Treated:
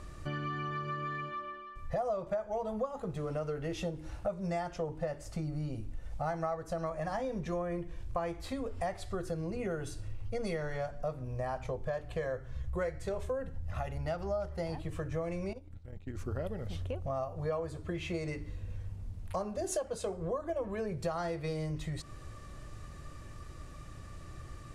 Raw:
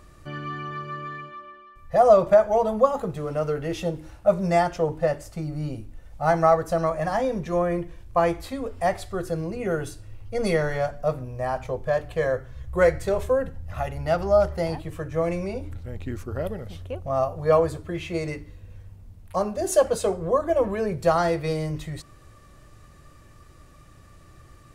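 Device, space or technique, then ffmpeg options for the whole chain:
ASMR close-microphone chain: -filter_complex "[0:a]lowpass=8800,lowshelf=frequency=120:gain=4,acompressor=threshold=-35dB:ratio=5,highshelf=frequency=9900:gain=5,asettb=1/sr,asplit=3[link_01][link_02][link_03];[link_01]atrim=end=15.534[link_04];[link_02]atrim=start=15.53:end=16.15,asetpts=PTS-STARTPTS,afade=type=in:duration=0.004:curve=qsin,afade=type=out:start_time=0.616:duration=0.004:curve=qsin,agate=range=-16dB:threshold=-35dB:ratio=16:detection=peak[link_05];[link_03]atrim=start=16.146[link_06];[link_04][link_05]acrossfade=duration=0.004:curve1=hsin:curve2=qsin[link_07];[link_07][link_06]acrossfade=duration=0.004:curve1=qsin:curve2=hsin,volume=1dB"

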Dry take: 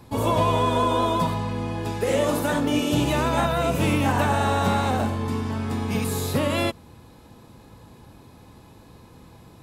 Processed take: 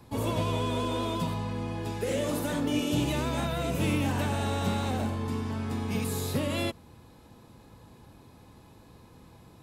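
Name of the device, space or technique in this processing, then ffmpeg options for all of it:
one-band saturation: -filter_complex "[0:a]acrossover=split=510|2100[link_01][link_02][link_03];[link_02]asoftclip=type=tanh:threshold=-32dB[link_04];[link_01][link_04][link_03]amix=inputs=3:normalize=0,volume=-5dB"

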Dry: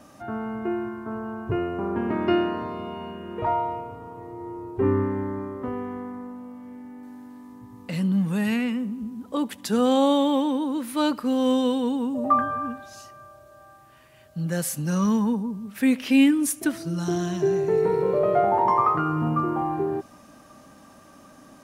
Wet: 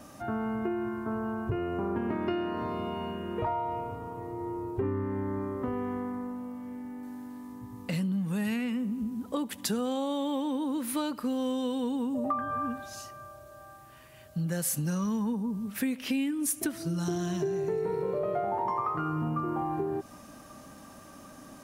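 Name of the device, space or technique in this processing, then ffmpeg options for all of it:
ASMR close-microphone chain: -af "lowshelf=frequency=110:gain=4.5,acompressor=threshold=-28dB:ratio=6,highshelf=frequency=8100:gain=6"

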